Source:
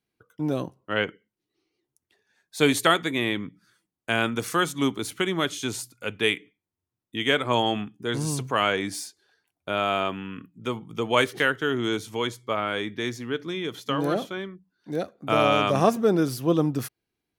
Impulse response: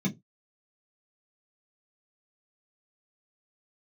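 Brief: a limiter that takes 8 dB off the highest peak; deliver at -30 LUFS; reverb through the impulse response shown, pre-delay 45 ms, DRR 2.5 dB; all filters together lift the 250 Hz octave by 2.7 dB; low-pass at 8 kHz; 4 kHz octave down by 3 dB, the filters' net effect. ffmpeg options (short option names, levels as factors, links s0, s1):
-filter_complex "[0:a]lowpass=8000,equalizer=f=250:t=o:g=3.5,equalizer=f=4000:t=o:g=-4,alimiter=limit=0.237:level=0:latency=1,asplit=2[s0][s1];[1:a]atrim=start_sample=2205,adelay=45[s2];[s1][s2]afir=irnorm=-1:irlink=0,volume=0.447[s3];[s0][s3]amix=inputs=2:normalize=0,volume=0.211"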